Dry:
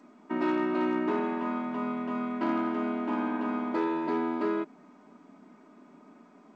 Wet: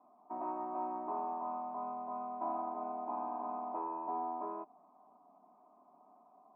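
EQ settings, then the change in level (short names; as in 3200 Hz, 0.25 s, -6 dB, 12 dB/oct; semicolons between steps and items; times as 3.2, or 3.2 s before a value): vocal tract filter a; air absorption 360 m; +7.5 dB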